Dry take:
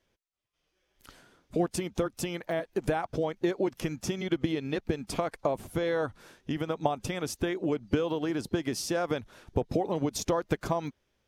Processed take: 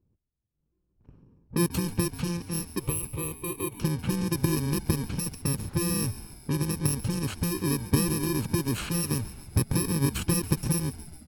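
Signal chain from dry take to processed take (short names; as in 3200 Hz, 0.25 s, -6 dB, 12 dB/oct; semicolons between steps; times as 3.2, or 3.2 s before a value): FFT order left unsorted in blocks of 64 samples; low-pass opened by the level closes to 670 Hz, open at -27 dBFS; bell 110 Hz +13 dB 2.5 oct; transient shaper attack -3 dB, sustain +3 dB; 2.79–3.8 fixed phaser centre 1100 Hz, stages 8; frequency-shifting echo 0.139 s, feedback 64%, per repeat -79 Hz, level -15.5 dB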